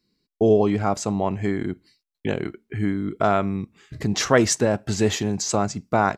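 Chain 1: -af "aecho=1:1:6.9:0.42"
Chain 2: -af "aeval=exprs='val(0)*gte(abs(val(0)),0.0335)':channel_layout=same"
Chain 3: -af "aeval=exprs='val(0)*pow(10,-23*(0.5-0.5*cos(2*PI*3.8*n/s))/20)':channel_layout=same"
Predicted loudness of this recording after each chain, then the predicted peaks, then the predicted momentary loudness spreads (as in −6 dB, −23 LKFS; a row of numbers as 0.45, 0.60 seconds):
−22.5, −23.0, −28.5 LKFS; −2.5, −2.5, −6.0 dBFS; 13, 13, 13 LU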